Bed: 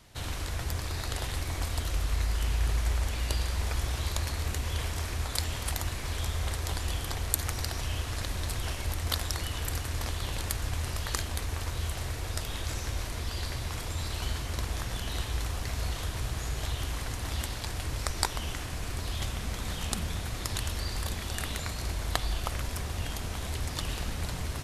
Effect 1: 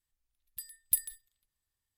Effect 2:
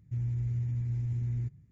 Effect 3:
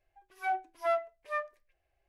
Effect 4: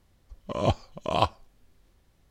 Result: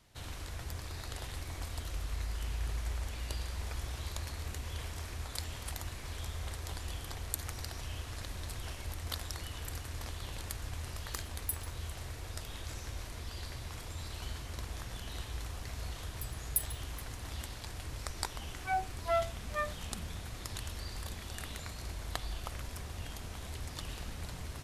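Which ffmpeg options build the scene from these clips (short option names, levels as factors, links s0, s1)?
-filter_complex "[1:a]asplit=2[s0][s1];[0:a]volume=0.376[s2];[s1]aecho=1:1:423:0.0944[s3];[s0]atrim=end=1.97,asetpts=PTS-STARTPTS,volume=0.335,afade=t=in:d=0.004:c=hsin,afade=t=out:st=1.966:d=0.004:c=hsin,adelay=10560[s4];[s3]atrim=end=1.97,asetpts=PTS-STARTPTS,volume=0.596,afade=t=in:d=0.004:c=hsin,afade=t=out:st=1.966:d=0.004:c=hsin,adelay=15630[s5];[3:a]atrim=end=2.08,asetpts=PTS-STARTPTS,volume=0.841,afade=t=in:d=0.004:c=hsin,afade=t=out:st=2.076:d=0.004:c=hsin,adelay=18240[s6];[s2][s4][s5][s6]amix=inputs=4:normalize=0"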